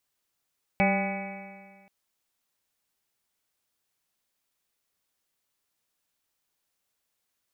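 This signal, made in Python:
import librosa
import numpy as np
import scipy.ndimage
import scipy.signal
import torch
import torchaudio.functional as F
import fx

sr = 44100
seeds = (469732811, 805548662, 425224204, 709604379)

y = fx.additive_stiff(sr, length_s=1.08, hz=193.0, level_db=-22.5, upper_db=(-12.5, -3.0, -2.0, -18.0, -19.5, -17.0, -18.0, -11.0, -2.5, -11), decay_s=1.73, stiffness=0.0037)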